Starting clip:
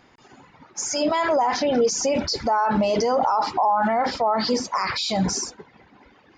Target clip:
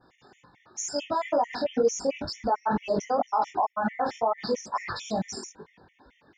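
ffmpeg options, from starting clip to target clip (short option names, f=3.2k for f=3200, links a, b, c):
-af "adynamicequalizer=threshold=0.00891:dfrequency=4000:dqfactor=0.88:tfrequency=4000:tqfactor=0.88:attack=5:release=100:ratio=0.375:range=3.5:mode=cutabove:tftype=bell,flanger=delay=17:depth=5.5:speed=2.1,afftfilt=real='re*gt(sin(2*PI*4.5*pts/sr)*(1-2*mod(floor(b*sr/1024/1800),2)),0)':imag='im*gt(sin(2*PI*4.5*pts/sr)*(1-2*mod(floor(b*sr/1024/1800),2)),0)':win_size=1024:overlap=0.75"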